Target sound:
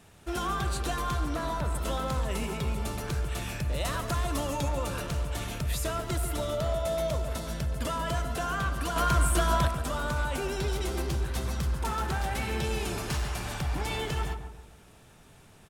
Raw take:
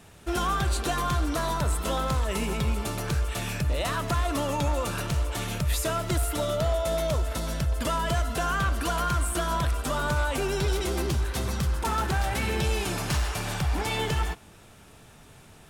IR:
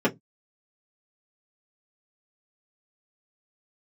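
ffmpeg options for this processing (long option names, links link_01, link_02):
-filter_complex "[0:a]asettb=1/sr,asplit=3[link_01][link_02][link_03];[link_01]atrim=end=1.274[link_04];[link_02]atrim=start=1.27:end=1.75,asetpts=PTS-STARTPTS,afade=type=in:duration=0.004:curve=qsin,afade=type=out:start_time=0.476:duration=0.004:curve=qsin,acrossover=split=3400[link_05][link_06];[link_06]acompressor=threshold=-42dB:ratio=4:attack=1:release=60[link_07];[link_05][link_07]amix=inputs=2:normalize=0[link_08];[link_03]atrim=start=1.746[link_09];[link_04][link_08]acrossfade=duration=0.004:curve1=hsin:curve2=qsin[link_10];[link_10][link_09]acrossfade=duration=0.004:curve1=qsin:curve2=hsin,asettb=1/sr,asplit=3[link_11][link_12][link_13];[link_11]atrim=end=3.734[link_14];[link_12]atrim=start=3.73:end=4.69,asetpts=PTS-STARTPTS,afade=type=in:duration=0.004:curve=qsin,afade=type=out:start_time=0.956:duration=0.004:curve=qsin,bass=frequency=250:gain=1,treble=frequency=4000:gain=4[link_15];[link_13]atrim=start=4.686[link_16];[link_14][link_15]acrossfade=duration=0.004:curve1=hsin:curve2=qsin[link_17];[link_17][link_16]acrossfade=duration=0.004:curve1=qsin:curve2=hsin,asettb=1/sr,asplit=3[link_18][link_19][link_20];[link_18]atrim=end=8.964[link_21];[link_19]atrim=start=8.96:end=9.68,asetpts=PTS-STARTPTS,afade=type=in:duration=0.004:curve=qsin,afade=type=out:start_time=0.716:duration=0.004:curve=qsin,acontrast=38[link_22];[link_20]atrim=start=9.676[link_23];[link_21][link_22]acrossfade=duration=0.004:curve1=hsin:curve2=qsin[link_24];[link_24][link_23]acrossfade=duration=0.004:curve1=qsin:curve2=hsin,asplit=2[link_25][link_26];[link_26]adelay=141,lowpass=frequency=1300:poles=1,volume=-7dB,asplit=2[link_27][link_28];[link_28]adelay=141,lowpass=frequency=1300:poles=1,volume=0.43,asplit=2[link_29][link_30];[link_30]adelay=141,lowpass=frequency=1300:poles=1,volume=0.43,asplit=2[link_31][link_32];[link_32]adelay=141,lowpass=frequency=1300:poles=1,volume=0.43,asplit=2[link_33][link_34];[link_34]adelay=141,lowpass=frequency=1300:poles=1,volume=0.43[link_35];[link_25][link_27][link_29][link_31][link_33][link_35]amix=inputs=6:normalize=0,volume=-4.5dB"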